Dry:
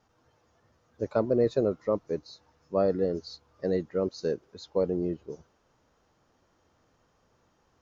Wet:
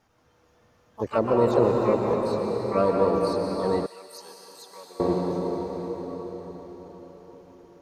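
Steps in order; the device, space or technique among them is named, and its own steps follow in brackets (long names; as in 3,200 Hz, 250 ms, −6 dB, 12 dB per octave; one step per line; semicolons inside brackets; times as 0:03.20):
shimmer-style reverb (pitch-shifted copies added +12 semitones −9 dB; convolution reverb RT60 5.4 s, pre-delay 113 ms, DRR −0.5 dB)
0:03.86–0:05.00: first difference
level +2 dB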